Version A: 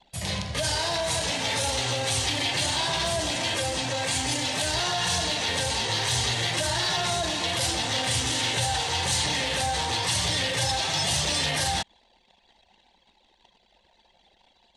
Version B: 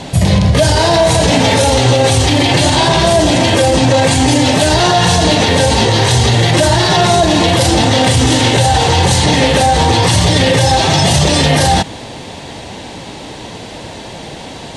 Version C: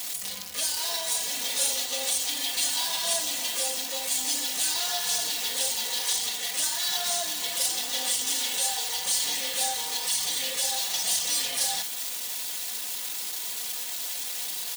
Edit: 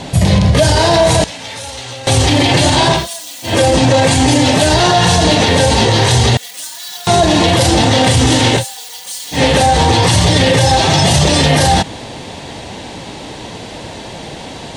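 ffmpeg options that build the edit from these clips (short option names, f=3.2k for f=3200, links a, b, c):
-filter_complex "[2:a]asplit=3[a][b][c];[1:a]asplit=5[d][e][f][g][h];[d]atrim=end=1.242[i];[0:a]atrim=start=1.238:end=2.072[j];[e]atrim=start=2.068:end=3.08[k];[a]atrim=start=2.92:end=3.58[l];[f]atrim=start=3.42:end=6.372[m];[b]atrim=start=6.368:end=7.072[n];[g]atrim=start=7.068:end=8.65[o];[c]atrim=start=8.55:end=9.41[p];[h]atrim=start=9.31[q];[i][j]acrossfade=d=0.004:c1=hsin:c2=hsin[r];[r][k]acrossfade=d=0.004:c1=hsin:c2=hsin[s];[s][l]acrossfade=d=0.16:c1=tri:c2=tri[t];[t][m]acrossfade=d=0.16:c1=tri:c2=tri[u];[u][n]acrossfade=d=0.004:c1=hsin:c2=hsin[v];[v][o]acrossfade=d=0.004:c1=hsin:c2=hsin[w];[w][p]acrossfade=d=0.1:c1=tri:c2=tri[x];[x][q]acrossfade=d=0.1:c1=tri:c2=tri"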